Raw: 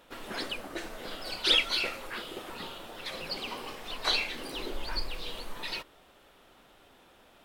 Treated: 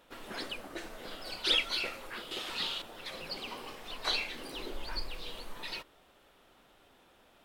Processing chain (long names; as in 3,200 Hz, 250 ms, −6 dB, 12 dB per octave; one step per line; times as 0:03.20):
0:02.31–0:02.82: parametric band 4,100 Hz +15 dB 2.3 octaves
level −4 dB